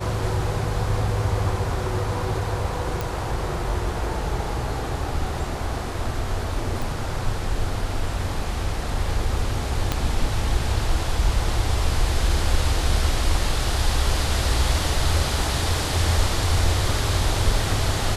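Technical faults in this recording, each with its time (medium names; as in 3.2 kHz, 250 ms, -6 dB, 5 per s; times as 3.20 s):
3.01 s: pop
6.82 s: pop
9.92 s: pop -8 dBFS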